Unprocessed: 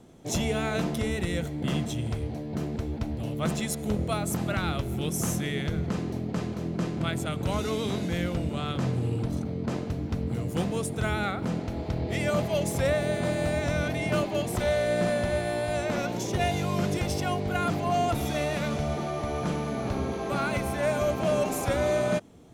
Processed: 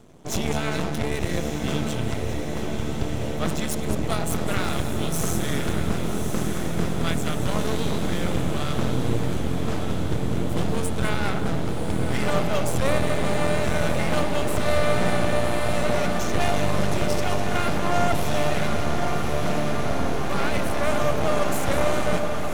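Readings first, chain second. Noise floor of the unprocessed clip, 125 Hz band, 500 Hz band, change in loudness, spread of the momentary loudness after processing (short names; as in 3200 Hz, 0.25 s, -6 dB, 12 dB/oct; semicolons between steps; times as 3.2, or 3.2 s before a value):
-35 dBFS, +2.5 dB, +2.5 dB, +3.5 dB, 4 LU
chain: echo with dull and thin repeats by turns 0.102 s, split 850 Hz, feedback 71%, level -7.5 dB; half-wave rectifier; diffused feedback echo 1.138 s, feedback 69%, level -6 dB; gain +5.5 dB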